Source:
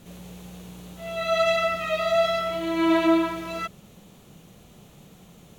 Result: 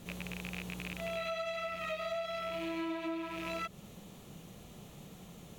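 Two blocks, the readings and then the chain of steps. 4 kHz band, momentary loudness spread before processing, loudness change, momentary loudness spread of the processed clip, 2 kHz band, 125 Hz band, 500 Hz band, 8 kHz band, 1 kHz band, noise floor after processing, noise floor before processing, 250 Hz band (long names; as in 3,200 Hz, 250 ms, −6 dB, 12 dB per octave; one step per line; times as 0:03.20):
−12.0 dB, 21 LU, −14.5 dB, 15 LU, −11.0 dB, −5.5 dB, −14.5 dB, −8.5 dB, −13.5 dB, −53 dBFS, −52 dBFS, −15.0 dB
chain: loose part that buzzes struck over −40 dBFS, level −25 dBFS
notch filter 1,500 Hz, Q 23
downward compressor 16 to 1, threshold −33 dBFS, peak gain reduction 18 dB
level −1.5 dB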